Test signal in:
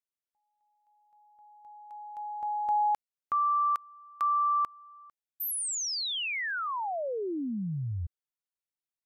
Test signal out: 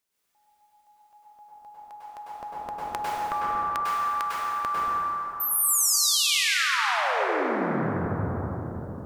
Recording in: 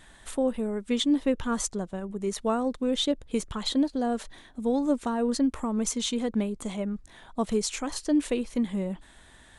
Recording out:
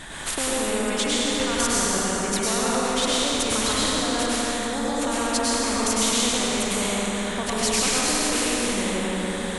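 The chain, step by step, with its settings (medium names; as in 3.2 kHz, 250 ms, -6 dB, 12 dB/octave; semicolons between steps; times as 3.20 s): peak limiter -23.5 dBFS; plate-style reverb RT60 3 s, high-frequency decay 0.55×, pre-delay 90 ms, DRR -9 dB; spectrum-flattening compressor 2:1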